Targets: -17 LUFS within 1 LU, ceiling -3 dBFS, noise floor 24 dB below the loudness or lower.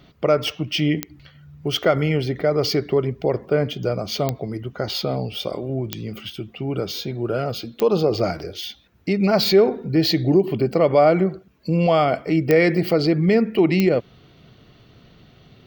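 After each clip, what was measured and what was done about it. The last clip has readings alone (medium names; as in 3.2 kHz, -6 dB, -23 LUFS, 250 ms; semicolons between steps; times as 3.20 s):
clicks found 6; loudness -20.5 LUFS; peak level -4.0 dBFS; loudness target -17.0 LUFS
-> de-click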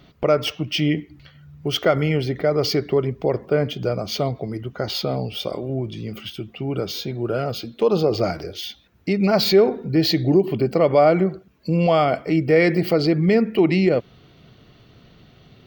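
clicks found 0; loudness -20.5 LUFS; peak level -5.5 dBFS; loudness target -17.0 LUFS
-> trim +3.5 dB; peak limiter -3 dBFS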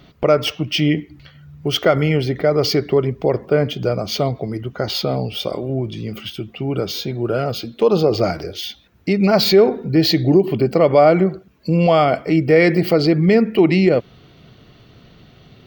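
loudness -17.5 LUFS; peak level -3.0 dBFS; noise floor -49 dBFS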